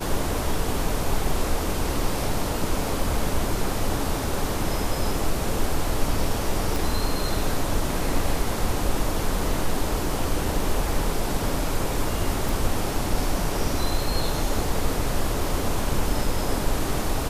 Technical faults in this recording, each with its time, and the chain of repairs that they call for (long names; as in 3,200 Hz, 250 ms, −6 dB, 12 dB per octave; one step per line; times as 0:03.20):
0:06.76: click
0:12.49: click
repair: click removal